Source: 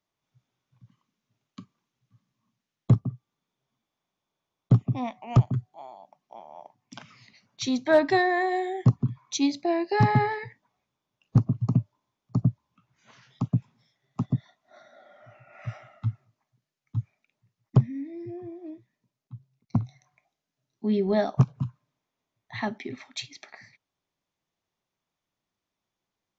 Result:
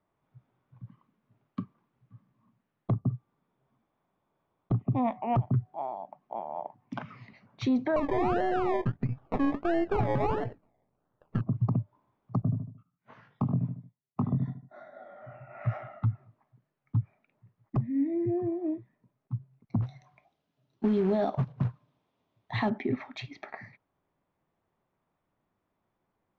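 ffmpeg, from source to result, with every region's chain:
-filter_complex "[0:a]asettb=1/sr,asplit=3[a][b][c];[a]atrim=end=7.964[d];[b]atrim=start=7.96:end=11.41,asetpts=PTS-STARTPTS,afade=t=in:d=0.004:c=qsin,afade=t=out:st=3.446:d=0.004:c=qsin,aeval=exprs='if(lt(val(0),0),0.447*val(0),val(0))':c=same,asuperstop=centerf=1000:order=8:qfactor=3.6,acrusher=samples=25:mix=1:aa=0.000001:lfo=1:lforange=15:lforate=1.5[e];[c]atrim=start=11.406[f];[d][e]acrossfade=d=0.004:c1=hsin:c2=qsin[g];[g][f]acrossfade=d=0.004:c1=qsin:c2=hsin,asettb=1/sr,asplit=3[h][i][j];[h]atrim=end=12.424[k];[i]atrim=start=12.42:end=15.66,asetpts=PTS-STARTPTS,afade=t=in:d=0.004:c=qsin,afade=t=out:st=3.236:d=0.004:c=qsin,agate=range=-33dB:threshold=-55dB:ratio=3:release=100:detection=peak,flanger=delay=19.5:depth=3.5:speed=1.2,asplit=2[l][m];[m]adelay=75,lowpass=f=1.7k:p=1,volume=-11dB,asplit=2[n][o];[o]adelay=75,lowpass=f=1.7k:p=1,volume=0.38,asplit=2[p][q];[q]adelay=75,lowpass=f=1.7k:p=1,volume=0.38,asplit=2[r][s];[s]adelay=75,lowpass=f=1.7k:p=1,volume=0.38[t];[l][n][p][r][t]amix=inputs=5:normalize=0,atrim=end_sample=142884[u];[j]atrim=start=15.656[v];[k][u]acrossfade=d=0.004:c1=hsin:c2=qsin[w];[w][v]acrossfade=d=0.004:c1=qsin:c2=hsin,asettb=1/sr,asplit=3[x][y][z];[x]atrim=end=19.824[aa];[y]atrim=start=19.82:end=22.7,asetpts=PTS-STARTPTS,afade=t=in:d=0.004:c=qsin,afade=t=out:st=2.876:d=0.004:c=qsin,highpass=42,highshelf=f=2.5k:t=q:w=1.5:g=8.5,acrusher=bits=3:mode=log:mix=0:aa=0.000001[ab];[z]atrim=start=22.696[ac];[aa][ab]acrossfade=d=0.004:c1=hsin:c2=qsin[ad];[ad][ac]acrossfade=d=0.004:c1=qsin:c2=hsin,lowpass=1.4k,acompressor=threshold=-26dB:ratio=6,alimiter=level_in=4dB:limit=-24dB:level=0:latency=1:release=50,volume=-4dB,volume=9dB"

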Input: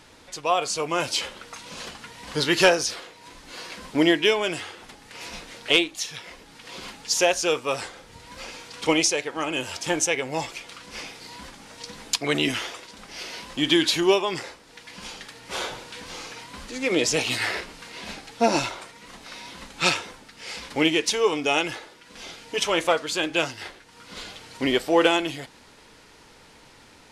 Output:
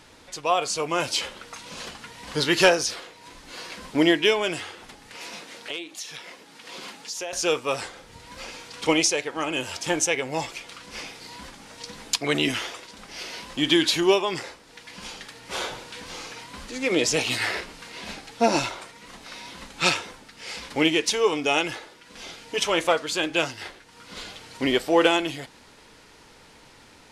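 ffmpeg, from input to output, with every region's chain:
-filter_complex "[0:a]asettb=1/sr,asplit=3[a][b][c];[a]atrim=end=5.164[d];[b]atrim=start=5.16:end=7.33,asetpts=PTS-STARTPTS,afade=t=in:d=0.004:c=qsin,afade=t=out:st=2.166:d=0.004:c=qsin,highpass=190,acompressor=threshold=-33dB:ratio=3:attack=3.2:release=140:knee=1:detection=peak[e];[c]atrim=start=7.326[f];[d][e]acrossfade=d=0.004:c1=hsin:c2=qsin[g];[g][f]acrossfade=d=0.004:c1=qsin:c2=hsin"

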